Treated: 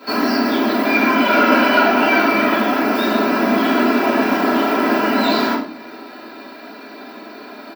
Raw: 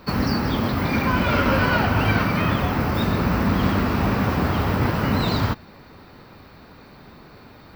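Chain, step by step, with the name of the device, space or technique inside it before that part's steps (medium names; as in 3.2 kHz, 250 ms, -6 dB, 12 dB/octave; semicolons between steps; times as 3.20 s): elliptic high-pass 220 Hz, stop band 80 dB; parallel compression (in parallel at -1.5 dB: compression, threshold -38 dBFS, peak gain reduction 19.5 dB); on the sum: comb 3 ms, depth 61%; simulated room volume 65 m³, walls mixed, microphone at 2.1 m; trim -4.5 dB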